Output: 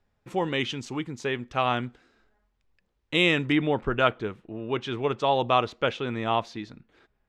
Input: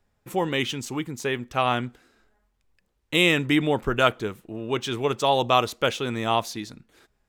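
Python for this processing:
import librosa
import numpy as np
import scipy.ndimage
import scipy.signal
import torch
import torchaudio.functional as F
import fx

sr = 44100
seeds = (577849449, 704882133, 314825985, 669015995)

y = fx.lowpass(x, sr, hz=fx.steps((0.0, 5300.0), (3.52, 3200.0)), slope=12)
y = y * librosa.db_to_amplitude(-2.0)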